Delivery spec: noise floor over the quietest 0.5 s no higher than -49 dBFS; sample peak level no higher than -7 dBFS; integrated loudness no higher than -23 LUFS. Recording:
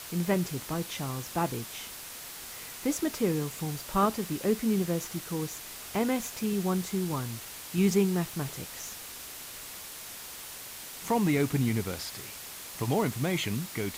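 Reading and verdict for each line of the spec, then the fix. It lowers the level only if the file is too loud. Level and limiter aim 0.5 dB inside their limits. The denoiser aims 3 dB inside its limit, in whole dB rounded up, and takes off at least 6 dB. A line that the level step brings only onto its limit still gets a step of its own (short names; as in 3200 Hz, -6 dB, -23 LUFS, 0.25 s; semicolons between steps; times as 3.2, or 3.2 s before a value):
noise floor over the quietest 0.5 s -43 dBFS: fail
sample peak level -13.0 dBFS: OK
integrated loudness -31.5 LUFS: OK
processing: denoiser 9 dB, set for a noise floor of -43 dBFS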